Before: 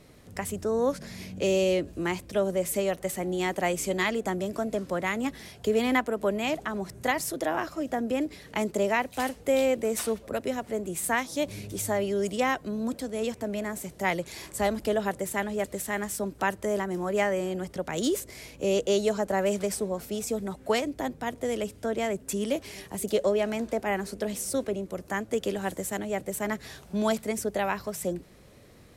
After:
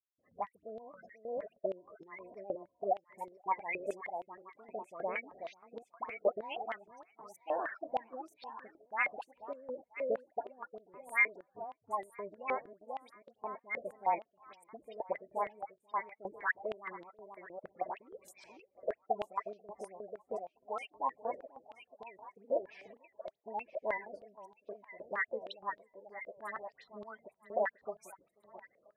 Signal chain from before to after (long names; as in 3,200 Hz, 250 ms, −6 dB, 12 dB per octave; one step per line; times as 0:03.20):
gate on every frequency bin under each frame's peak −15 dB strong
dynamic equaliser 970 Hz, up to +3 dB, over −45 dBFS, Q 2.4
gate pattern "..xxx.xxxxxx...x" 165 BPM −60 dB
formants moved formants +2 semitones
all-pass dispersion highs, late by 91 ms, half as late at 1,600 Hz
pitch vibrato 7.8 Hz 65 cents
delay that swaps between a low-pass and a high-pass 487 ms, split 820 Hz, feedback 50%, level −10.5 dB
band-pass on a step sequencer 6.4 Hz 560–3,800 Hz
level +3 dB